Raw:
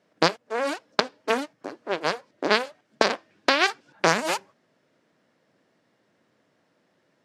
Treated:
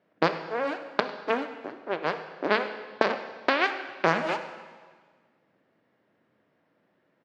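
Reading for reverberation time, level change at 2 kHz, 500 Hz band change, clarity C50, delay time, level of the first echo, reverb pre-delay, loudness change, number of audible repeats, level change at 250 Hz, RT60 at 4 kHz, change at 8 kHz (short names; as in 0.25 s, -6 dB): 1.5 s, -3.0 dB, -2.0 dB, 9.5 dB, 0.101 s, -18.0 dB, 21 ms, -3.0 dB, 1, -2.0 dB, 1.5 s, under -15 dB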